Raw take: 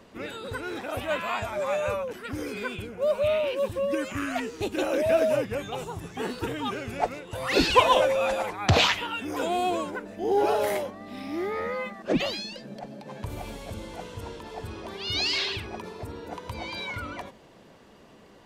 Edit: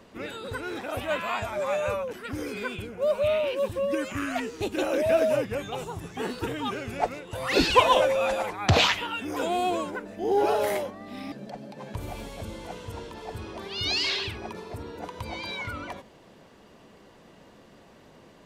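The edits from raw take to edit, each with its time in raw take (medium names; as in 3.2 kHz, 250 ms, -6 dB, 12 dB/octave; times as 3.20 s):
11.32–12.61 s: delete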